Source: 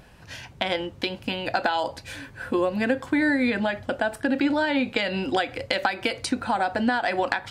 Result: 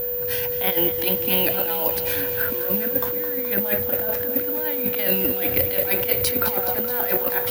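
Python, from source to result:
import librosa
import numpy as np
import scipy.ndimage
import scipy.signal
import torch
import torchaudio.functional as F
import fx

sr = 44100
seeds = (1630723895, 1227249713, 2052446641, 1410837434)

y = fx.low_shelf(x, sr, hz=200.0, db=6.5, at=(5.21, 6.32))
y = fx.over_compress(y, sr, threshold_db=-29.0, ratio=-0.5)
y = y + 10.0 ** (-29.0 / 20.0) * np.sin(2.0 * np.pi * 490.0 * np.arange(len(y)) / sr)
y = (np.kron(scipy.signal.resample_poly(y, 1, 3), np.eye(3)[0]) * 3)[:len(y)]
y = fx.echo_crushed(y, sr, ms=212, feedback_pct=80, bits=6, wet_db=-11)
y = y * librosa.db_to_amplitude(1.0)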